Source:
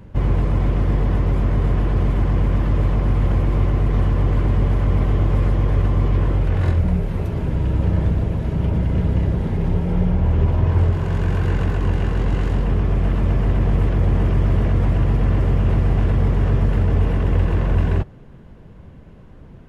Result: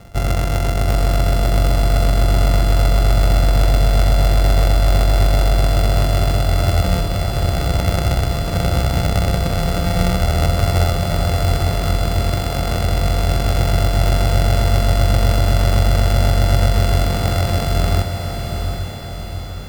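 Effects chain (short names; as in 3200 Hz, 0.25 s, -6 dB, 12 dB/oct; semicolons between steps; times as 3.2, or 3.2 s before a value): sample sorter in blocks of 64 samples; diffused feedback echo 0.781 s, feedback 56%, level -6 dB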